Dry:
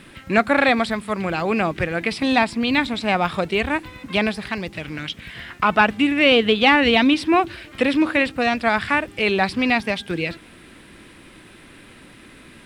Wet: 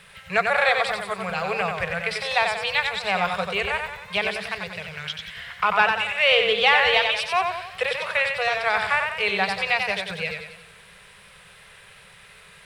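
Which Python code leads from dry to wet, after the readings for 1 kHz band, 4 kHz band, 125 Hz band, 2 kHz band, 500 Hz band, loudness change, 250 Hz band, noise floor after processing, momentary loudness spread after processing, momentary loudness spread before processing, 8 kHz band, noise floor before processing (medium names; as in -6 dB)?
-2.0 dB, -0.5 dB, -8.0 dB, -0.5 dB, -4.0 dB, -2.5 dB, -20.0 dB, -49 dBFS, 13 LU, 13 LU, 0.0 dB, -46 dBFS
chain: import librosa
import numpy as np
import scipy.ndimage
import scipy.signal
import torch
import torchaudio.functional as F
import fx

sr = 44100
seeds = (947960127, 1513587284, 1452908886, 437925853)

y = scipy.signal.sosfilt(scipy.signal.ellip(3, 1.0, 40, [190.0, 420.0], 'bandstop', fs=sr, output='sos'), x)
y = fx.low_shelf(y, sr, hz=440.0, db=-7.5)
y = fx.echo_warbled(y, sr, ms=92, feedback_pct=47, rate_hz=2.8, cents=77, wet_db=-5.0)
y = F.gain(torch.from_numpy(y), -1.5).numpy()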